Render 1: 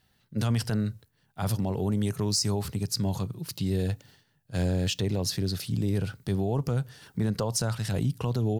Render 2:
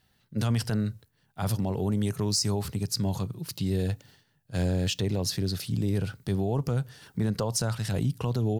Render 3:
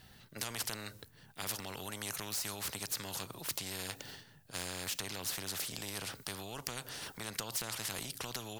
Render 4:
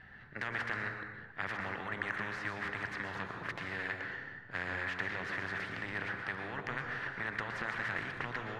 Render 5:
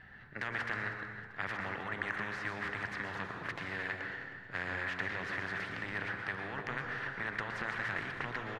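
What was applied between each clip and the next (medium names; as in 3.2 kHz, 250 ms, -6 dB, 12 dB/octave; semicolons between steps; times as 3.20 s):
no audible change
spectrum-flattening compressor 4:1; trim +1 dB
resonant low-pass 1.8 kHz, resonance Q 4.7; plate-style reverb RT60 1.1 s, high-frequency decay 0.6×, pre-delay 105 ms, DRR 3.5 dB
feedback delay 316 ms, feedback 44%, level -15 dB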